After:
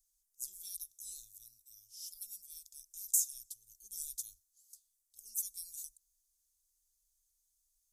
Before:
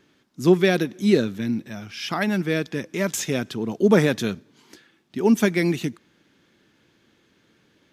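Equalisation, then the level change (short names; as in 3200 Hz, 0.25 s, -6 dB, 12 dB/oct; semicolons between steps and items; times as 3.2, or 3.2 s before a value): inverse Chebyshev band-stop 140–2100 Hz, stop band 70 dB; +4.5 dB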